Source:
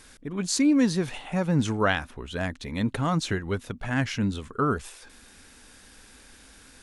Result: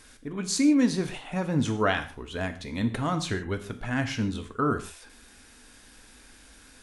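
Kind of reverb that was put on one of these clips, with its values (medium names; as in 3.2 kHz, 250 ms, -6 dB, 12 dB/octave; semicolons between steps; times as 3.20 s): gated-style reverb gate 180 ms falling, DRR 7 dB; trim -2 dB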